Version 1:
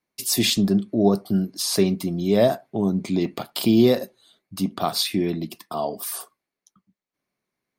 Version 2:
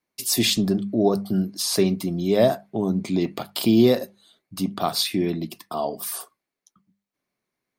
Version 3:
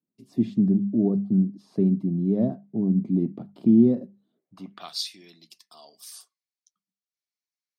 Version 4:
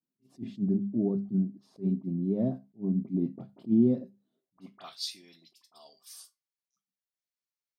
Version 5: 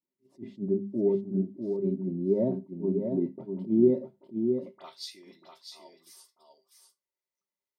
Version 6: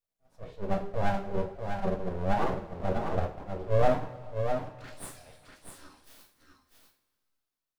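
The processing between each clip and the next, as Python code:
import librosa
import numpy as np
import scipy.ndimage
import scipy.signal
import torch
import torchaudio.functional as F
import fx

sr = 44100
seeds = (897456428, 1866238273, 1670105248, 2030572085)

y1 = fx.hum_notches(x, sr, base_hz=50, count=4)
y2 = fx.peak_eq(y1, sr, hz=140.0, db=9.5, octaves=2.3)
y2 = fx.filter_sweep_bandpass(y2, sr, from_hz=230.0, to_hz=5400.0, start_s=4.28, end_s=5.0, q=1.6)
y2 = y2 * 10.0 ** (-4.5 / 20.0)
y3 = fx.comb_fb(y2, sr, f0_hz=130.0, decay_s=0.2, harmonics='all', damping=0.0, mix_pct=60)
y3 = fx.dispersion(y3, sr, late='highs', ms=43.0, hz=2100.0)
y3 = fx.attack_slew(y3, sr, db_per_s=340.0)
y4 = fx.small_body(y3, sr, hz=(390.0, 560.0, 910.0, 2000.0), ring_ms=45, db=15)
y4 = fx.rider(y4, sr, range_db=10, speed_s=2.0)
y4 = y4 + 10.0 ** (-6.0 / 20.0) * np.pad(y4, (int(647 * sr / 1000.0), 0))[:len(y4)]
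y4 = y4 * 10.0 ** (-7.0 / 20.0)
y5 = fx.comb_fb(y4, sr, f0_hz=81.0, decay_s=0.57, harmonics='all', damping=0.0, mix_pct=50)
y5 = np.abs(y5)
y5 = fx.rev_double_slope(y5, sr, seeds[0], early_s=0.33, late_s=2.3, knee_db=-18, drr_db=3.0)
y5 = y5 * 10.0 ** (5.5 / 20.0)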